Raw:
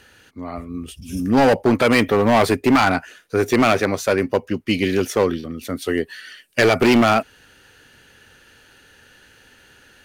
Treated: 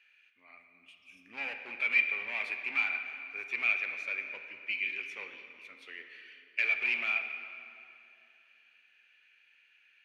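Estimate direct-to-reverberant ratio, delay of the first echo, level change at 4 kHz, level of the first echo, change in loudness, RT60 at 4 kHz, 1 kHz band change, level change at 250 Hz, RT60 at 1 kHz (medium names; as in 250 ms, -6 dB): 5.5 dB, no echo, -17.0 dB, no echo, -13.0 dB, 2.1 s, -27.0 dB, -39.5 dB, 2.7 s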